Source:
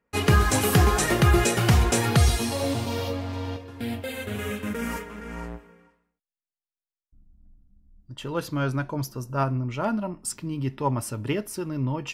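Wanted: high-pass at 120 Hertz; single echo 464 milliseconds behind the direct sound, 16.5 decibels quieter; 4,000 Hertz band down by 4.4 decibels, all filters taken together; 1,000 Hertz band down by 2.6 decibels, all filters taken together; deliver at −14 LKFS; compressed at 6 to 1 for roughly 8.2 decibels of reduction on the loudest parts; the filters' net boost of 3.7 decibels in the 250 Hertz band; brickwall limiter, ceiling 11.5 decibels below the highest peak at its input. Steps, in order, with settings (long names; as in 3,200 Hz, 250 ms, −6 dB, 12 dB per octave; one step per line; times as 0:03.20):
high-pass filter 120 Hz
parametric band 250 Hz +5.5 dB
parametric band 1,000 Hz −3.5 dB
parametric band 4,000 Hz −6 dB
downward compressor 6 to 1, threshold −23 dBFS
brickwall limiter −24 dBFS
single-tap delay 464 ms −16.5 dB
level +19 dB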